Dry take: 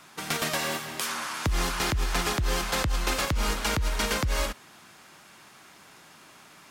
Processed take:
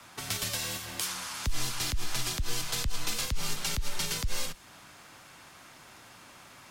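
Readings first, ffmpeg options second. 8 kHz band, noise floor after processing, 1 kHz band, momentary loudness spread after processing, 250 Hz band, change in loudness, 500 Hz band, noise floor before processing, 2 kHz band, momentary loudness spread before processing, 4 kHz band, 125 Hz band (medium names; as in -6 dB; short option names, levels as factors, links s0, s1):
0.0 dB, -53 dBFS, -10.5 dB, 19 LU, -9.5 dB, -4.5 dB, -11.5 dB, -53 dBFS, -8.0 dB, 4 LU, -2.0 dB, -6.5 dB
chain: -filter_complex "[0:a]acrossover=split=180|3000[s0][s1][s2];[s1]acompressor=threshold=0.00891:ratio=6[s3];[s0][s3][s2]amix=inputs=3:normalize=0,afreqshift=-48"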